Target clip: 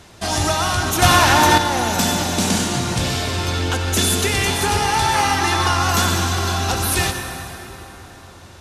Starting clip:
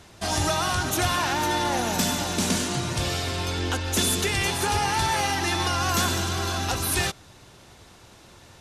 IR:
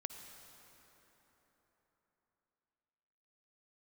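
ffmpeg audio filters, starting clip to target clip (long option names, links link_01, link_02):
-filter_complex "[0:a]asettb=1/sr,asplit=3[link_01][link_02][link_03];[link_01]atrim=end=5.144[link_04];[link_02]atrim=start=5.14:end=5.74,asetpts=PTS-STARTPTS,afade=type=in:duration=0.004:curve=qsin,afade=type=out:start_time=0.596:duration=0.004:curve=qsin,equalizer=frequency=1200:width_type=o:width=0.51:gain=7[link_05];[link_03]atrim=start=5.736[link_06];[link_04][link_05]acrossfade=duration=0.004:curve1=hsin:curve2=qsin[link_07];[link_07][link_06]acrossfade=duration=0.004:curve1=qsin:curve2=hsin[link_08];[1:a]atrim=start_sample=2205[link_09];[link_08][link_09]afir=irnorm=-1:irlink=0,asettb=1/sr,asplit=3[link_10][link_11][link_12];[link_10]atrim=end=1.024[link_13];[link_11]atrim=start=1.02:end=1.58,asetpts=PTS-STARTPTS,afade=type=in:duration=0.004:curve=qsin,afade=type=out:start_time=0.556:duration=0.004:curve=qsin,acontrast=59[link_14];[link_12]atrim=start=1.576[link_15];[link_13][link_14]acrossfade=duration=0.004:curve1=hsin:curve2=qsin[link_16];[link_16][link_15]acrossfade=duration=0.004:curve1=qsin:curve2=hsin,volume=8dB"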